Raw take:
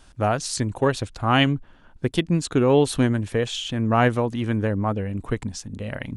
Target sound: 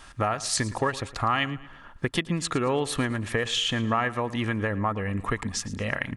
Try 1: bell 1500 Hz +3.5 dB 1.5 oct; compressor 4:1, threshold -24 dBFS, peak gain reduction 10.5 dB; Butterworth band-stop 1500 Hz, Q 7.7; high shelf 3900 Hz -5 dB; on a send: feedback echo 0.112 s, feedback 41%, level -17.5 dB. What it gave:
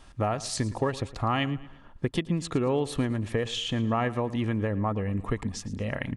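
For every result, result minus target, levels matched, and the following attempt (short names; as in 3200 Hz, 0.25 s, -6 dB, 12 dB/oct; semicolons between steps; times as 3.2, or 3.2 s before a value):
2000 Hz band -5.5 dB; 8000 Hz band -5.0 dB
bell 1500 Hz +13.5 dB 1.5 oct; compressor 4:1, threshold -24 dBFS, peak gain reduction 15 dB; Butterworth band-stop 1500 Hz, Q 7.7; high shelf 3900 Hz -5 dB; on a send: feedback echo 0.112 s, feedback 41%, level -17.5 dB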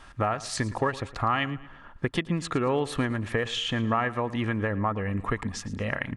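8000 Hz band -6.5 dB
bell 1500 Hz +13.5 dB 1.5 oct; compressor 4:1, threshold -24 dBFS, peak gain reduction 15 dB; Butterworth band-stop 1500 Hz, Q 7.7; high shelf 3900 Hz +5 dB; on a send: feedback echo 0.112 s, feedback 41%, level -17.5 dB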